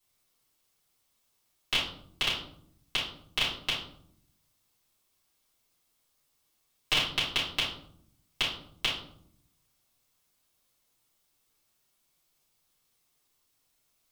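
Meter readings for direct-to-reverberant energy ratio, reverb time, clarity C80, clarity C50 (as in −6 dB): −11.0 dB, 0.65 s, 8.5 dB, 4.0 dB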